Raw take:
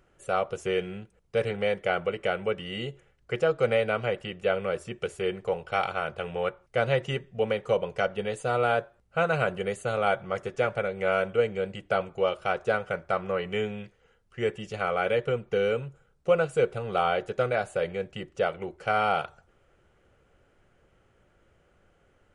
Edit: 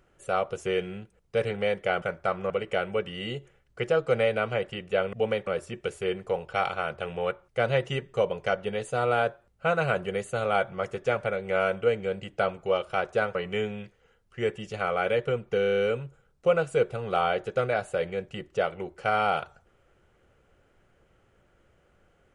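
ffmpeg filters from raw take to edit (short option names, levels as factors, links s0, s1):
-filter_complex "[0:a]asplit=13[s0][s1][s2][s3][s4][s5][s6][s7][s8][s9][s10][s11][s12];[s0]atrim=end=2.022[s13];[s1]atrim=start=12.868:end=13.352[s14];[s2]atrim=start=2.018:end=4.652[s15];[s3]atrim=start=7.318:end=7.662[s16];[s4]atrim=start=4.648:end=7.322[s17];[s5]atrim=start=7.658:end=12.872[s18];[s6]atrim=start=13.348:end=15.642[s19];[s7]atrim=start=15.608:end=15.642[s20];[s8]atrim=start=15.608:end=15.642[s21];[s9]atrim=start=15.608:end=15.642[s22];[s10]atrim=start=15.608:end=15.642[s23];[s11]atrim=start=15.608:end=15.642[s24];[s12]atrim=start=15.608[s25];[s13][s14]acrossfade=d=0.004:c1=hsin:c2=hsin[s26];[s26][s15]acrossfade=d=0.004:c1=hsin:c2=hsin[s27];[s27][s16]acrossfade=d=0.004:c1=hsin:c2=hsin[s28];[s28][s17]acrossfade=d=0.004:c1=hsin:c2=hsin[s29];[s29][s18]acrossfade=d=0.004:c1=hsin:c2=hsin[s30];[s30][s19]acrossfade=d=0.004:c1=hsin:c2=hsin[s31];[s31][s20]acrossfade=d=0.004:c1=hsin:c2=hsin[s32];[s32][s21]acrossfade=d=0.004:c1=hsin:c2=hsin[s33];[s33][s22]acrossfade=d=0.004:c1=hsin:c2=hsin[s34];[s34][s23]acrossfade=d=0.004:c1=hsin:c2=hsin[s35];[s35][s24]acrossfade=d=0.004:c1=hsin:c2=hsin[s36];[s36][s25]acrossfade=d=0.004:c1=hsin:c2=hsin"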